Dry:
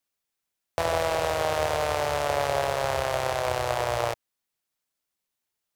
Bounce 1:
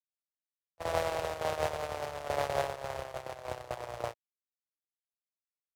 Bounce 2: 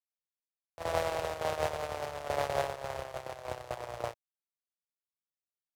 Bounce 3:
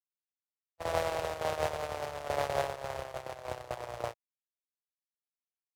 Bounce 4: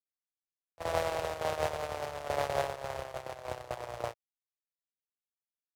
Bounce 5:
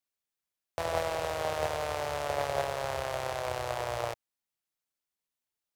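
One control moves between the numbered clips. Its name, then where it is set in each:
gate, range: -46, -22, -59, -34, -7 dB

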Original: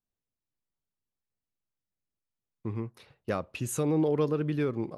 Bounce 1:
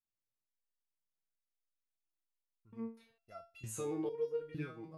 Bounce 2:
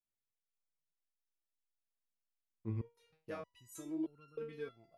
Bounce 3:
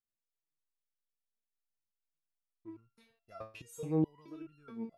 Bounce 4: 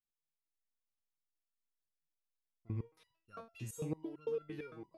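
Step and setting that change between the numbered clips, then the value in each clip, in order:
stepped resonator, rate: 2.2, 3.2, 4.7, 8.9 Hz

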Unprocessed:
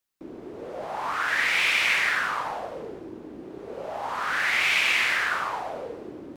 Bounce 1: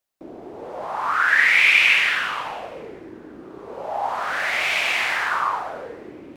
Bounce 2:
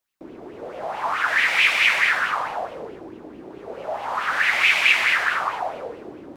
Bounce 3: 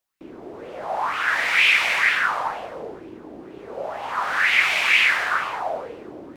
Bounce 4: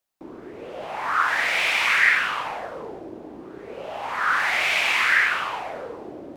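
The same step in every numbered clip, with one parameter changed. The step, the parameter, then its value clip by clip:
LFO bell, rate: 0.22, 4.6, 2.1, 0.64 Hz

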